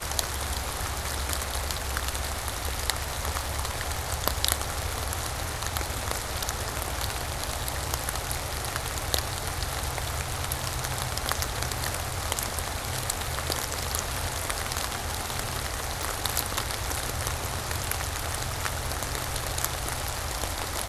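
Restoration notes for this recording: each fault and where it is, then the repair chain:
crackle 36/s -37 dBFS
16.03 pop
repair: de-click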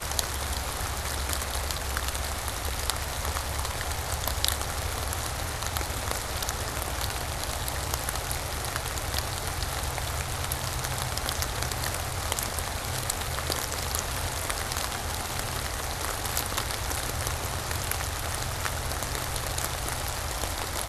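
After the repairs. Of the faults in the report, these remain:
none

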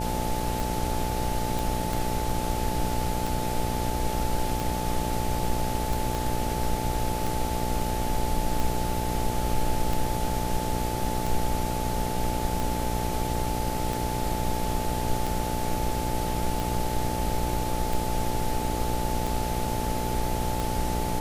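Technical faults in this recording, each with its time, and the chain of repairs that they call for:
buzz 60 Hz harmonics 13 -31 dBFS
tick 45 rpm
tone 870 Hz -32 dBFS
1.59 pop
6.15 pop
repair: de-click; notch 870 Hz, Q 30; de-hum 60 Hz, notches 13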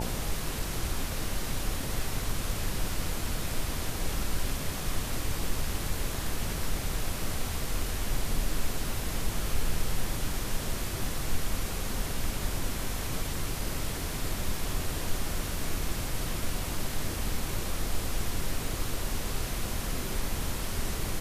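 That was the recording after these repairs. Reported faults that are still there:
6.15 pop

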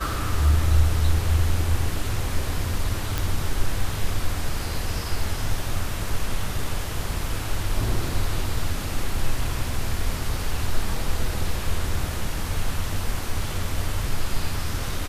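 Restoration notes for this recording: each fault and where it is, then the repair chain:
3.18 pop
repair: de-click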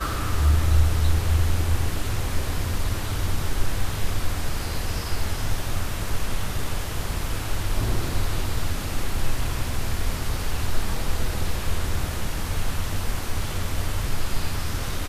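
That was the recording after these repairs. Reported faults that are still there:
none

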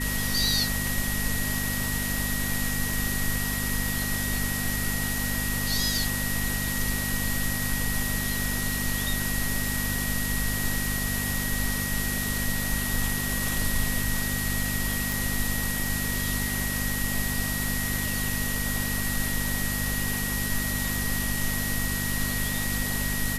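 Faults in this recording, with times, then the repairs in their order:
hum 50 Hz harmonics 5 -32 dBFS
tone 1900 Hz -33 dBFS
15.12 pop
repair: de-click; notch 1900 Hz, Q 30; de-hum 50 Hz, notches 5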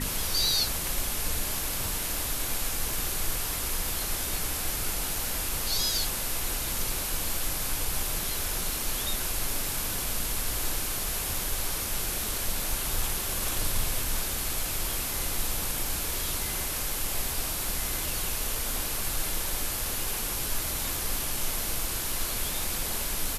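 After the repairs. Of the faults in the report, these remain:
none

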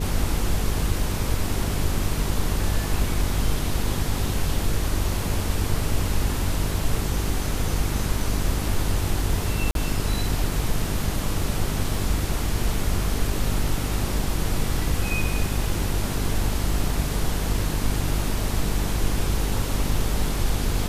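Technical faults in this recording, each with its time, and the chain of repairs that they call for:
buzz 50 Hz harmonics 9 -28 dBFS
9.71–9.75 gap 42 ms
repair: de-hum 50 Hz, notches 9; interpolate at 9.71, 42 ms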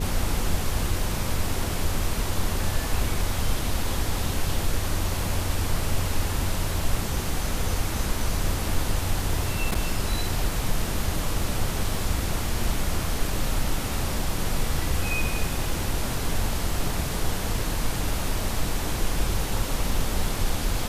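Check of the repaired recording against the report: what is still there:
none

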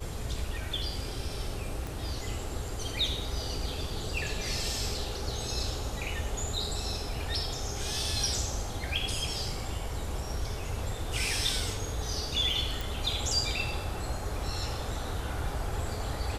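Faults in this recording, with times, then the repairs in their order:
1.87 pop
12.81 pop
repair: de-click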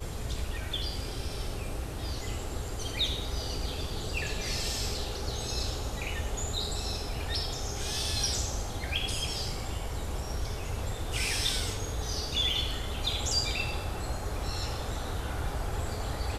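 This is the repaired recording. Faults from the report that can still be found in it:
none

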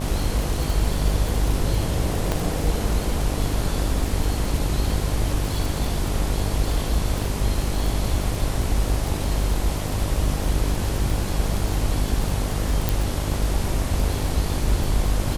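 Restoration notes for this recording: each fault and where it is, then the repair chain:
buzz 50 Hz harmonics 22 -27 dBFS
crackle 39/s -24 dBFS
2.32 pop
12.89 pop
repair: de-click; de-hum 50 Hz, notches 22

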